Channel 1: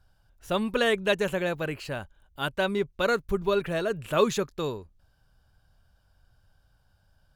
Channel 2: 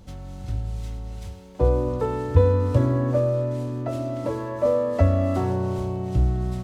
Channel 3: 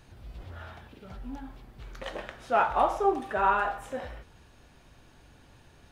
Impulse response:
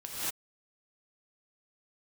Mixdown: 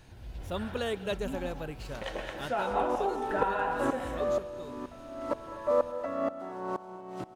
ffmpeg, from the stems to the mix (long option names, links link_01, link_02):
-filter_complex "[0:a]equalizer=frequency=1900:width=1.3:gain=-6.5,volume=-8dB,afade=type=out:start_time=2.41:duration=0.52:silence=0.334965,asplit=2[link_01][link_02];[link_02]volume=-22.5dB[link_03];[1:a]highpass=frequency=210:width=0.5412,highpass=frequency=210:width=1.3066,equalizer=frequency=1200:width=1:gain=11,aeval=exprs='val(0)*pow(10,-25*if(lt(mod(-2.1*n/s,1),2*abs(-2.1)/1000),1-mod(-2.1*n/s,1)/(2*abs(-2.1)/1000),(mod(-2.1*n/s,1)-2*abs(-2.1)/1000)/(1-2*abs(-2.1)/1000))/20)':channel_layout=same,adelay=1050,volume=-5.5dB,asplit=2[link_04][link_05];[link_05]volume=-15.5dB[link_06];[2:a]bandreject=frequency=1200:width=7.5,acompressor=threshold=-30dB:ratio=4,volume=-1.5dB,asplit=2[link_07][link_08];[link_08]volume=-6dB[link_09];[3:a]atrim=start_sample=2205[link_10];[link_03][link_06][link_09]amix=inputs=3:normalize=0[link_11];[link_11][link_10]afir=irnorm=-1:irlink=0[link_12];[link_01][link_04][link_07][link_12]amix=inputs=4:normalize=0"